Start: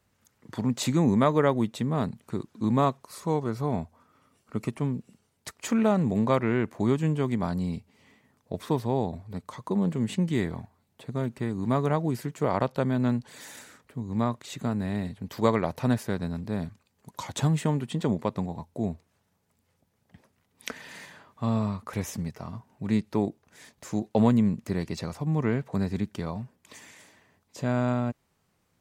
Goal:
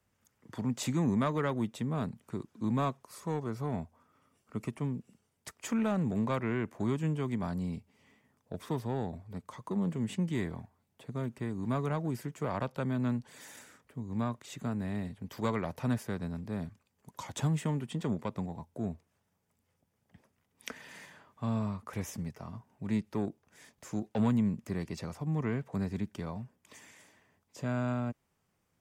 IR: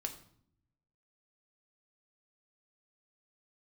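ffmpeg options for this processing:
-filter_complex "[0:a]equalizer=frequency=4100:width_type=o:width=0.2:gain=-6.5,acrossover=split=280|930[link_01][link_02][link_03];[link_02]asoftclip=type=tanh:threshold=-28.5dB[link_04];[link_01][link_04][link_03]amix=inputs=3:normalize=0,volume=-5.5dB"

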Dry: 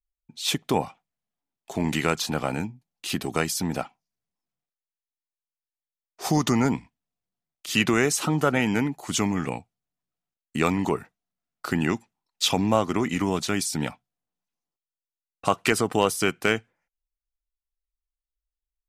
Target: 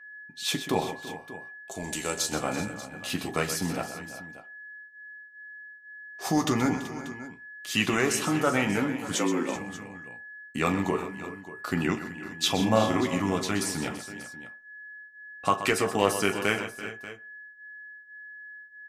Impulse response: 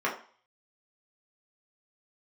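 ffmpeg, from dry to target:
-filter_complex "[0:a]asettb=1/sr,asplit=3[link_01][link_02][link_03];[link_01]atrim=end=1.714[link_04];[link_02]atrim=start=1.71:end=2.32,asetpts=PTS-STARTPTS,afade=type=in:duration=0.004:curve=qsin,afade=type=out:start_time=0.606:duration=0.004:curve=qsin,equalizer=frequency=125:width_type=o:width=1:gain=-9,equalizer=frequency=250:width_type=o:width=1:gain=-7,equalizer=frequency=1000:width_type=o:width=1:gain=-5,equalizer=frequency=2000:width_type=o:width=1:gain=-9,equalizer=frequency=8000:width_type=o:width=1:gain=10[link_05];[link_03]atrim=start=2.316[link_06];[link_04][link_05]acrossfade=duration=0.004:curve1=hsin:curve2=qsin[link_07];[link_07][link_06]acrossfade=duration=0.004:curve1=qsin:curve2=hsin,aeval=exprs='val(0)+0.00501*sin(2*PI*1700*n/s)':channel_layout=same,aecho=1:1:40|127|335|381|587:0.15|0.282|0.158|0.168|0.15,flanger=delay=9.9:depth=1.2:regen=-41:speed=0.49:shape=triangular,asettb=1/sr,asplit=3[link_08][link_09][link_10];[link_08]atrim=end=9.154[link_11];[link_09]atrim=start=9.15:end=9.56,asetpts=PTS-STARTPTS,afade=type=in:duration=0.004:curve=qsin,afade=type=out:start_time=0.406:duration=0.004:curve=qsin,afreqshift=80[link_12];[link_10]atrim=start=9.556[link_13];[link_11][link_12]acrossfade=duration=0.004:curve1=hsin:curve2=qsin[link_14];[link_14][link_13]acrossfade=duration=0.004:curve1=qsin:curve2=hsin,asettb=1/sr,asplit=3[link_15][link_16][link_17];[link_15]atrim=end=12.564[link_18];[link_16]atrim=start=12.56:end=13.01,asetpts=PTS-STARTPTS,afade=type=in:duration=0.004:curve=qsin,afade=type=out:start_time=0.446:duration=0.004:curve=qsin,asplit=2[link_19][link_20];[link_20]adelay=36,volume=-3.5dB[link_21];[link_19][link_21]amix=inputs=2:normalize=0,atrim=end_sample=19845[link_22];[link_17]atrim=start=13.006[link_23];[link_18][link_22]acrossfade=duration=0.004:curve1=hsin:curve2=qsin[link_24];[link_24][link_23]acrossfade=duration=0.004:curve1=qsin:curve2=hsin,asplit=2[link_25][link_26];[1:a]atrim=start_sample=2205[link_27];[link_26][link_27]afir=irnorm=-1:irlink=0,volume=-19.5dB[link_28];[link_25][link_28]amix=inputs=2:normalize=0"

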